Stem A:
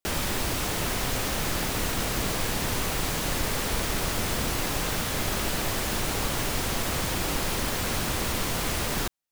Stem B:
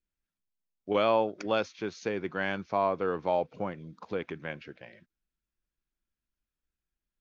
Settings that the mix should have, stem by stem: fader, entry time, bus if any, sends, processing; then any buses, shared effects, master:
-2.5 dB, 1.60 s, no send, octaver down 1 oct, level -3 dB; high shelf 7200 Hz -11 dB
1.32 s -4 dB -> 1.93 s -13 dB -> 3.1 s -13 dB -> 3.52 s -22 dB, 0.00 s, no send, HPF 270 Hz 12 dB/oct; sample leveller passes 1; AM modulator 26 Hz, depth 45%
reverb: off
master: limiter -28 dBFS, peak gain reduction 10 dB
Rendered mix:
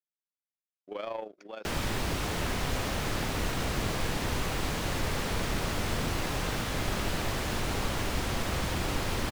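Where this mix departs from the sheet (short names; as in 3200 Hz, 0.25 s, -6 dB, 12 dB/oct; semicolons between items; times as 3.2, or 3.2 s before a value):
stem B -4.0 dB -> -11.0 dB; master: missing limiter -28 dBFS, peak gain reduction 10 dB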